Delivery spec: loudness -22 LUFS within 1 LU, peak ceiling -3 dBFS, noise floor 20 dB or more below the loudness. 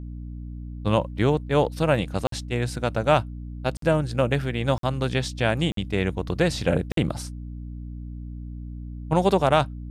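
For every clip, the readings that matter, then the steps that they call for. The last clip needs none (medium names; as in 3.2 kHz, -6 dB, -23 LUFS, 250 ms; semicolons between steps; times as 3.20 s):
dropouts 5; longest dropout 53 ms; hum 60 Hz; highest harmonic 300 Hz; hum level -33 dBFS; loudness -24.5 LUFS; peak level -7.0 dBFS; loudness target -22.0 LUFS
-> interpolate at 2.27/3.77/4.78/5.72/6.92 s, 53 ms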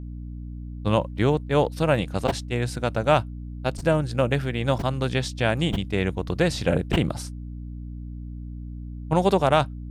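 dropouts 0; hum 60 Hz; highest harmonic 300 Hz; hum level -33 dBFS
-> de-hum 60 Hz, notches 5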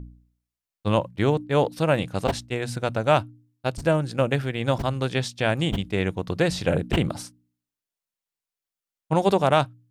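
hum not found; loudness -24.5 LUFS; peak level -7.5 dBFS; loudness target -22.0 LUFS
-> trim +2.5 dB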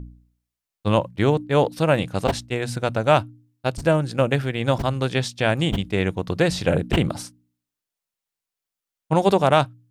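loudness -22.0 LUFS; peak level -5.0 dBFS; noise floor -87 dBFS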